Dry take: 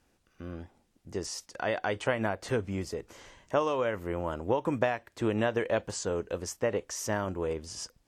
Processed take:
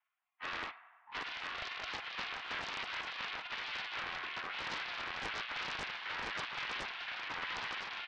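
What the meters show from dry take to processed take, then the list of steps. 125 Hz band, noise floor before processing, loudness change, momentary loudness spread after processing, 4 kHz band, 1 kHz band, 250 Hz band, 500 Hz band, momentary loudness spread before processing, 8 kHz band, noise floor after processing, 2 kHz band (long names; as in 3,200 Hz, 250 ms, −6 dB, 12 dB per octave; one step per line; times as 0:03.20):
−22.0 dB, −71 dBFS, −7.5 dB, 3 LU, +3.5 dB, −6.0 dB, −21.5 dB, −22.5 dB, 12 LU, −17.0 dB, −67 dBFS, 0.0 dB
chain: lower of the sound and its delayed copy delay 2.9 ms
gate on every frequency bin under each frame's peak −20 dB weak
repeating echo 1,014 ms, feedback 27%, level −7.5 dB
low-pass that shuts in the quiet parts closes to 1,800 Hz, open at −43.5 dBFS
transient designer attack −4 dB, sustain +9 dB
noise reduction from a noise print of the clip's start 22 dB
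in parallel at −1.5 dB: downward compressor, threshold −59 dBFS, peak gain reduction 20.5 dB
on the sum: tape delay 98 ms, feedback 74%, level −17.5 dB, low-pass 2,500 Hz
brickwall limiter −45.5 dBFS, peak gain reduction 19.5 dB
single-sideband voice off tune +210 Hz 520–3,000 Hz
highs frequency-modulated by the lows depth 0.44 ms
level +16.5 dB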